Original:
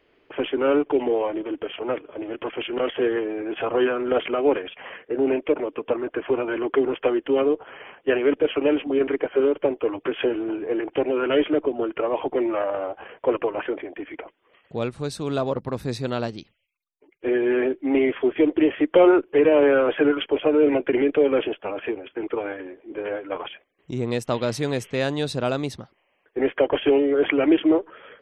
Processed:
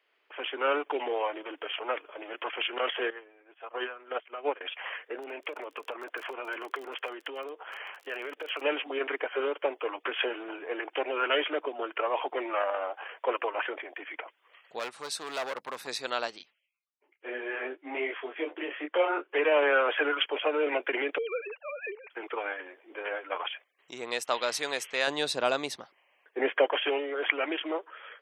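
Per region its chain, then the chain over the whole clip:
3.10–4.61 s: treble shelf 4.2 kHz -4.5 dB + upward expansion 2.5:1, over -34 dBFS
5.16–8.61 s: compression 5:1, threshold -27 dBFS + crackle 32 per s -38 dBFS
14.79–15.87 s: high-pass 40 Hz + hard clipper -25 dBFS
16.38–19.32 s: low-pass 3.1 kHz 6 dB/octave + detune thickener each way 21 cents
21.18–22.11 s: formants replaced by sine waves + compression 2:1, threshold -24 dBFS
25.07–26.66 s: bass shelf 380 Hz +11.5 dB + band-stop 1.3 kHz, Q 20
whole clip: high-pass 880 Hz 12 dB/octave; level rider gain up to 8 dB; trim -6 dB

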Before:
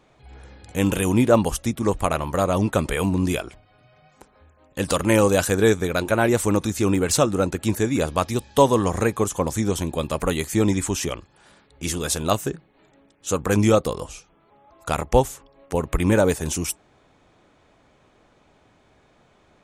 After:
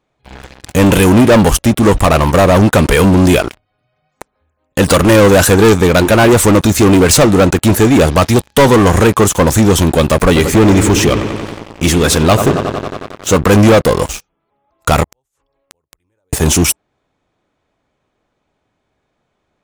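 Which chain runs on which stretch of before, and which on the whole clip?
10.25–13.33 s: treble shelf 6.5 kHz -7 dB + feedback echo behind a low-pass 91 ms, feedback 81%, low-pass 2.7 kHz, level -13 dB
15.04–16.33 s: inverted gate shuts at -23 dBFS, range -32 dB + peaking EQ 210 Hz -12.5 dB 0.53 oct + compression 16:1, threshold -52 dBFS
whole clip: dynamic bell 7.8 kHz, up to -4 dB, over -40 dBFS, Q 0.98; waveshaping leveller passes 5

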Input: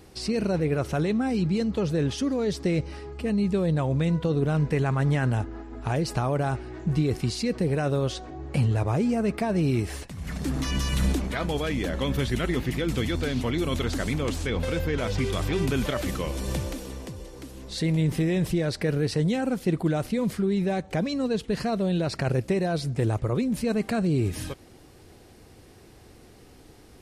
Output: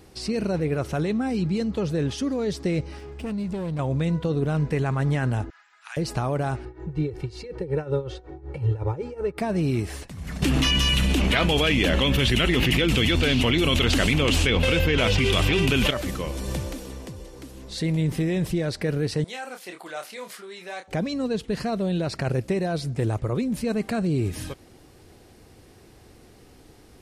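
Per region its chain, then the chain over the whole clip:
2.98–3.79 s: comb filter that takes the minimum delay 0.36 ms + compression 3:1, threshold -27 dBFS + band-stop 1.2 kHz, Q 28
5.50–5.97 s: high-pass 1.4 kHz 24 dB/octave + upward compressor, threshold -56 dBFS
6.65–9.38 s: low-pass 1.3 kHz 6 dB/octave + tremolo 5.4 Hz, depth 83% + comb 2.2 ms, depth 95%
10.42–15.91 s: peaking EQ 2.8 kHz +13.5 dB 0.62 oct + level flattener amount 100%
19.24–20.88 s: high-pass 890 Hz + doubling 28 ms -6.5 dB
whole clip: none

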